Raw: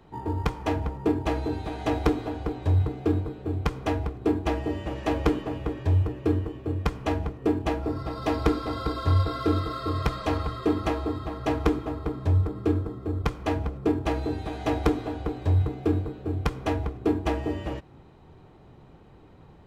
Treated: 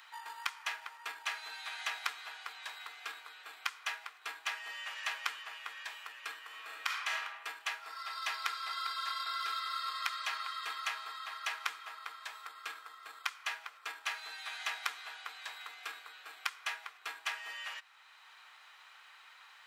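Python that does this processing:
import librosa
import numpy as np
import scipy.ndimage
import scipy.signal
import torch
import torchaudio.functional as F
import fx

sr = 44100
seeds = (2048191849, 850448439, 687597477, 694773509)

y = fx.reverb_throw(x, sr, start_s=6.46, length_s=0.73, rt60_s=0.97, drr_db=-1.5)
y = scipy.signal.sosfilt(scipy.signal.butter(4, 1400.0, 'highpass', fs=sr, output='sos'), y)
y = fx.band_squash(y, sr, depth_pct=40)
y = y * librosa.db_to_amplitude(2.0)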